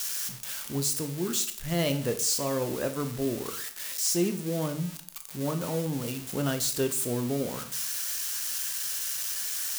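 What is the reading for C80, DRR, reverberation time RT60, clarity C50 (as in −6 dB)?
15.0 dB, 7.0 dB, 0.55 s, 11.5 dB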